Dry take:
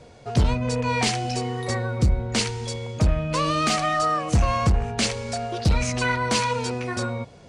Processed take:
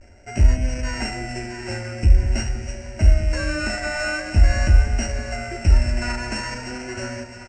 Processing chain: sorted samples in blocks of 16 samples; comb 2 ms, depth 43%; de-hum 66.68 Hz, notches 19; vibrato 0.46 Hz 46 cents; steep low-pass 8.2 kHz 72 dB/octave; bass shelf 190 Hz +8 dB; static phaser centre 710 Hz, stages 8; two-band feedback delay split 560 Hz, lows 195 ms, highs 658 ms, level -9.5 dB

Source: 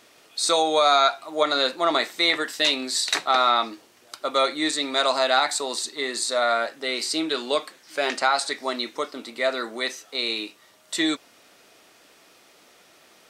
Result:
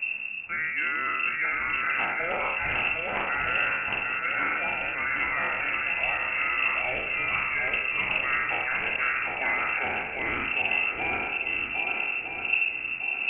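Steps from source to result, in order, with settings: spectral sustain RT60 1.02 s; wind noise 88 Hz -27 dBFS; reverse; compression 6:1, threshold -26 dBFS, peak gain reduction 15.5 dB; reverse; shuffle delay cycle 1258 ms, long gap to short 1.5:1, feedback 37%, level -3.5 dB; frequency inversion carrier 2.7 kHz; loudspeaker Doppler distortion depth 0.11 ms

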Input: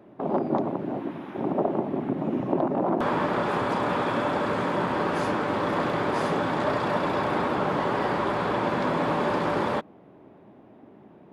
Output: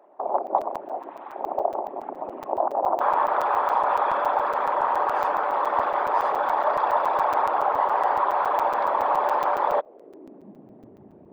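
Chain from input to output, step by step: resonances exaggerated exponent 1.5; high-pass sweep 810 Hz -> 69 Hz, 9.63–11.13 s; crackling interface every 0.14 s, samples 256, zero, from 0.47 s; trim +1 dB

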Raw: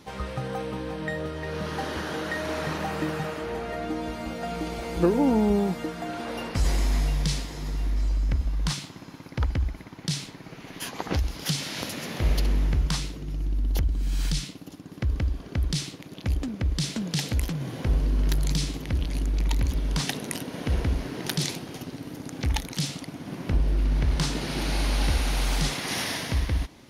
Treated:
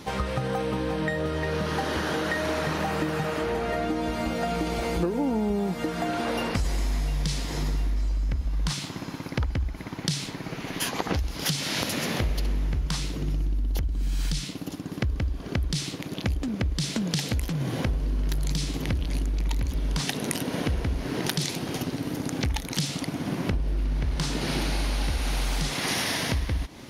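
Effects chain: compression 6:1, threshold -32 dBFS, peak gain reduction 14.5 dB; trim +8 dB

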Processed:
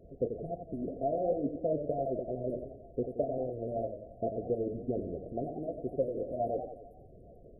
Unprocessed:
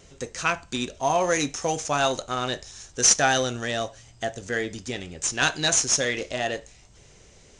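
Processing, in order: on a send: feedback echo behind a high-pass 420 ms, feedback 73%, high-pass 3.9 kHz, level -3.5 dB; on the sum: harmonic-percussive split harmonic -9 dB; resonant high shelf 6.4 kHz -13.5 dB, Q 3; compression 6:1, threshold -26 dBFS, peak gain reduction 11.5 dB; hard clipper -27.5 dBFS, distortion -11 dB; LFO low-pass saw down 6.8 Hz 390–2100 Hz; FFT band-reject 720–8700 Hz; modulated delay 90 ms, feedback 53%, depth 120 cents, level -8 dB; trim +2 dB

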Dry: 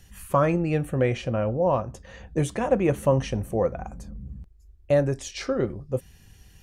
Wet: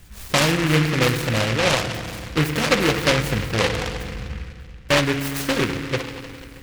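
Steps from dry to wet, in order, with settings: in parallel at -1 dB: compression, threshold -29 dBFS, peak gain reduction 13.5 dB; on the sum: FDN reverb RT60 2.1 s, low-frequency decay 1.35×, high-frequency decay 0.7×, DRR 6 dB; delay time shaken by noise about 1.8 kHz, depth 0.27 ms

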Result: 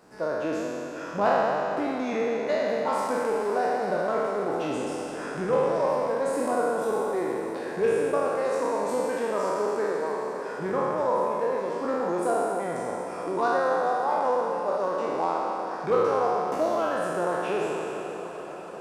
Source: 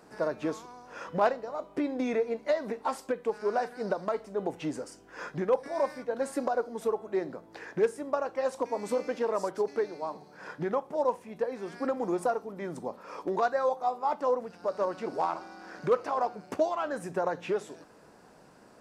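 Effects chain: spectral sustain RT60 2.79 s; on a send: echo that smears into a reverb 498 ms, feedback 78%, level -13.5 dB; on the sum: trim -2 dB

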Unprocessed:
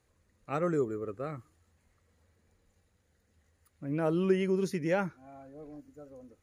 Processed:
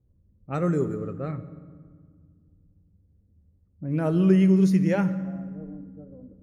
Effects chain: level-controlled noise filter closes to 330 Hz, open at -29 dBFS; tone controls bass +9 dB, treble +2 dB; on a send: reverberation RT60 1.7 s, pre-delay 3 ms, DRR 11 dB; on the sum: trim +1.5 dB

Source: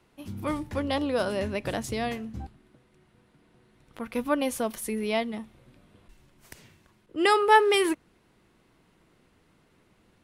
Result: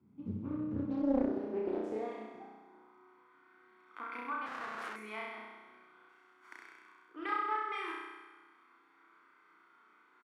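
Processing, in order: peaking EQ 1.6 kHz +7.5 dB 0.24 oct; comb 0.9 ms, depth 64%; compression 6:1, threshold -33 dBFS, peak gain reduction 19 dB; on a send: flutter echo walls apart 5.6 m, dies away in 1.3 s; on the sum: high-pass sweep 100 Hz -> 310 Hz, 0.80–1.32 s; 4.46–4.96 s: Schmitt trigger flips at -33 dBFS; band-pass sweep 230 Hz -> 1.4 kHz, 0.79–3.52 s; loudspeaker Doppler distortion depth 0.72 ms

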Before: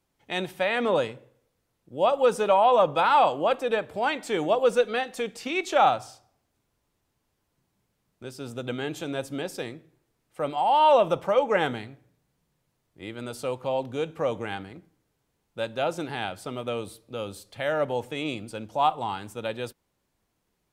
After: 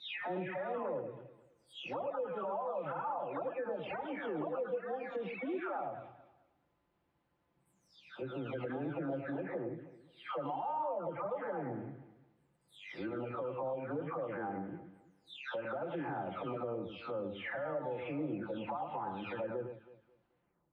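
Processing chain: delay that grows with frequency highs early, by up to 651 ms; high-pass 140 Hz 6 dB/octave; distance through air 370 m; compression 12:1, threshold -34 dBFS, peak gain reduction 17.5 dB; peak limiter -32.5 dBFS, peak gain reduction 8.5 dB; echo whose repeats swap between lows and highs 108 ms, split 1.9 kHz, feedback 51%, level -7 dB; low-pass that closes with the level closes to 1.5 kHz, closed at -37 dBFS; trim +2 dB

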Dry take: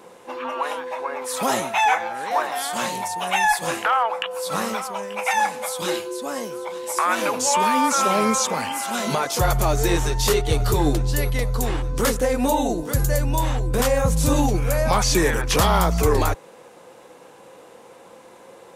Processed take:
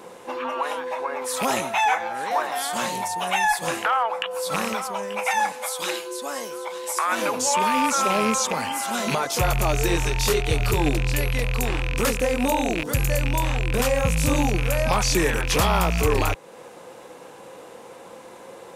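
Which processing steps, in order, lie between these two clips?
rattle on loud lows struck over -30 dBFS, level -14 dBFS; 5.52–7.12 s: high-pass 670 Hz 6 dB/octave; in parallel at +2.5 dB: compression, threshold -32 dBFS, peak gain reduction 17 dB; on the sum: trim -4 dB

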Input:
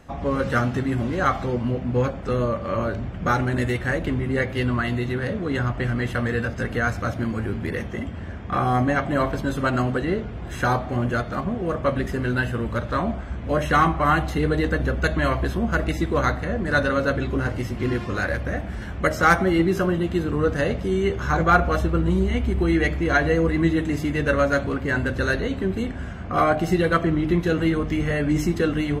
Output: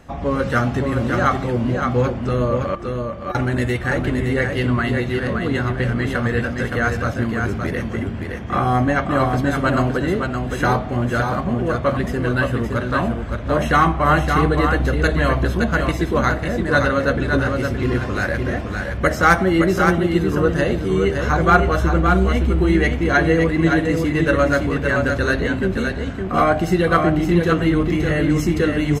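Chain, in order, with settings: 2.75–3.35 s: inharmonic resonator 350 Hz, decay 0.23 s, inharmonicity 0.03; delay 567 ms -5 dB; trim +3 dB

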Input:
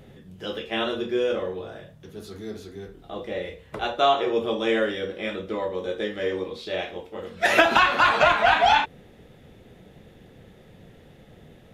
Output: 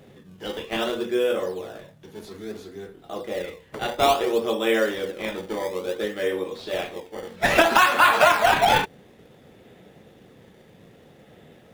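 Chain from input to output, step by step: high-pass 230 Hz 6 dB/octave; in parallel at -5.5 dB: decimation with a swept rate 19×, swing 160% 0.59 Hz; on the sum: trim -1 dB

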